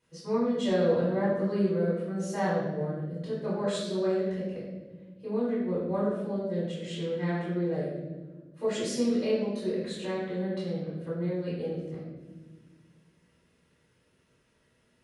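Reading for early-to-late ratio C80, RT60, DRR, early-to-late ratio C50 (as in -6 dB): 3.0 dB, not exponential, -9.0 dB, 0.5 dB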